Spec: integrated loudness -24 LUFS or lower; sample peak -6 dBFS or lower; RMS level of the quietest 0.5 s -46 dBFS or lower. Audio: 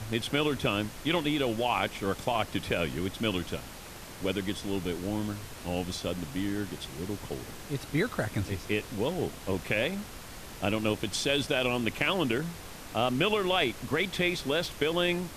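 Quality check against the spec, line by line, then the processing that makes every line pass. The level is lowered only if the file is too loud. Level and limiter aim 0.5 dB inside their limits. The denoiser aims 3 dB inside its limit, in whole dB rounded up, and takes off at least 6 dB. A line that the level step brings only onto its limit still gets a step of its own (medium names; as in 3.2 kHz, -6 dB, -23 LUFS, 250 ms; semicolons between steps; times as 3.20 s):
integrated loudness -30.5 LUFS: pass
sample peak -12.5 dBFS: pass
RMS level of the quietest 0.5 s -45 dBFS: fail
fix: noise reduction 6 dB, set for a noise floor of -45 dBFS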